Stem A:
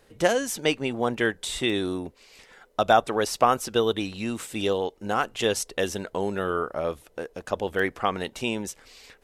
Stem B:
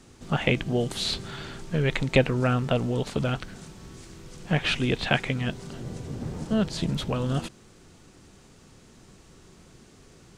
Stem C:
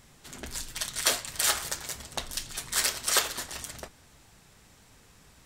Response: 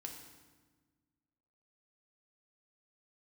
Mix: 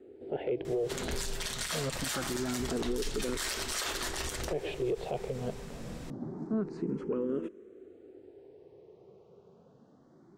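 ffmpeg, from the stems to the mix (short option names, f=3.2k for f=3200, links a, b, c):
-filter_complex "[1:a]bandpass=f=410:t=q:w=3.4:csg=0,aeval=exprs='0.168*sin(PI/2*1.58*val(0)/0.168)':c=same,asplit=2[a][b];[b]afreqshift=0.25[c];[a][c]amix=inputs=2:normalize=1,volume=-4dB[d];[2:a]asubboost=boost=3.5:cutoff=59,adelay=650,volume=1.5dB,highshelf=f=7.2k:g=-7.5,acompressor=threshold=-34dB:ratio=2,volume=0dB[e];[d][e]amix=inputs=2:normalize=0,acontrast=63,alimiter=limit=-24dB:level=0:latency=1:release=50"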